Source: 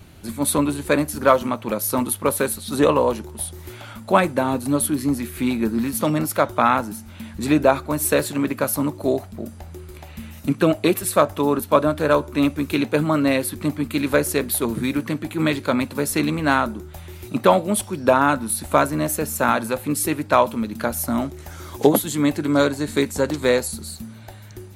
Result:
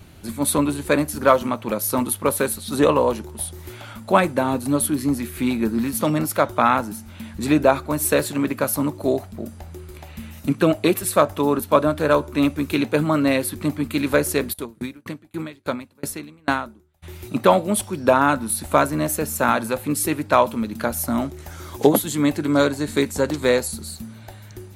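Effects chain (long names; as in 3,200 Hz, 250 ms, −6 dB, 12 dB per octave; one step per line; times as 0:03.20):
0:14.52–0:17.02: tremolo with a ramp in dB decaying 4.8 Hz → 1.6 Hz, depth 34 dB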